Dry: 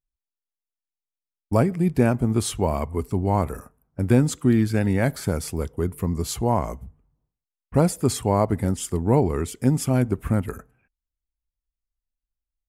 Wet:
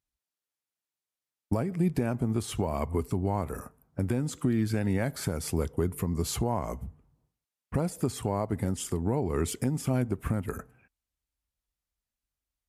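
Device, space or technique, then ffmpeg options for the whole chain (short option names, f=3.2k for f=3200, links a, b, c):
podcast mastering chain: -af "highpass=61,deesser=0.55,acompressor=threshold=-26dB:ratio=3,alimiter=limit=-20.5dB:level=0:latency=1:release=436,volume=4.5dB" -ar 32000 -c:a libmp3lame -b:a 96k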